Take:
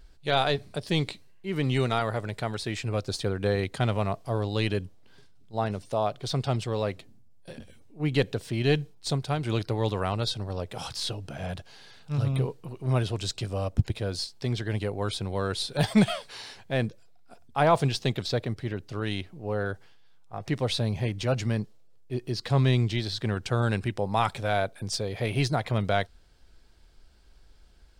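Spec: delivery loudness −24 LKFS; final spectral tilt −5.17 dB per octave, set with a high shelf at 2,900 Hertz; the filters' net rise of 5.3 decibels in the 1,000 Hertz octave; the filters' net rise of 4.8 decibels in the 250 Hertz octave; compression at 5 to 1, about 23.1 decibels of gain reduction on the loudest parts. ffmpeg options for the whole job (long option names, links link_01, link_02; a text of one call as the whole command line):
ffmpeg -i in.wav -af "equalizer=frequency=250:width_type=o:gain=6,equalizer=frequency=1000:width_type=o:gain=6.5,highshelf=frequency=2900:gain=3.5,acompressor=threshold=-38dB:ratio=5,volume=17.5dB" out.wav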